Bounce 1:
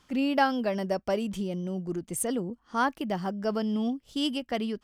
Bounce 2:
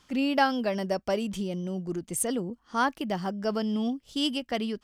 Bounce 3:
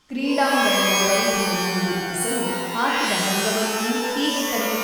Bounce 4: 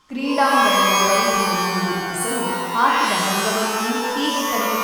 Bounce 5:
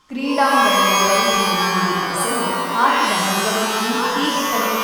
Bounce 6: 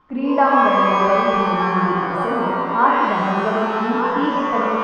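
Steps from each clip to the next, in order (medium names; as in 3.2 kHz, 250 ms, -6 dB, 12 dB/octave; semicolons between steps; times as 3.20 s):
peaking EQ 5.2 kHz +3.5 dB 2.3 oct
pitch-shifted reverb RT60 1.6 s, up +12 st, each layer -2 dB, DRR -3.5 dB
peaking EQ 1.1 kHz +10 dB 0.51 oct
repeats whose band climbs or falls 598 ms, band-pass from 3.7 kHz, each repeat -1.4 oct, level -3.5 dB; trim +1 dB
low-pass 1.4 kHz 12 dB/octave; trim +2 dB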